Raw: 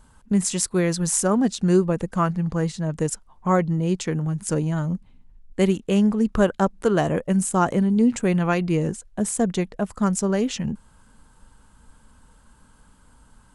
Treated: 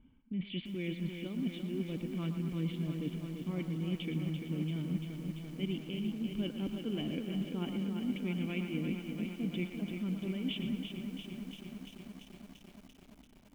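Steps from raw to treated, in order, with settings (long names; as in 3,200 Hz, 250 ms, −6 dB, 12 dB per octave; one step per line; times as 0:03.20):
formant resonators in series i
tilt shelving filter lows −7.5 dB
reversed playback
downward compressor 16 to 1, threshold −42 dBFS, peak gain reduction 19 dB
reversed playback
low-pass that shuts in the quiet parts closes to 1,500 Hz, open at −46.5 dBFS
on a send: feedback echo with a band-pass in the loop 116 ms, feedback 69%, band-pass 1,300 Hz, level −7.5 dB
on the sum: feedback echo at a low word length 341 ms, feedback 80%, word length 11 bits, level −6.5 dB
level +8.5 dB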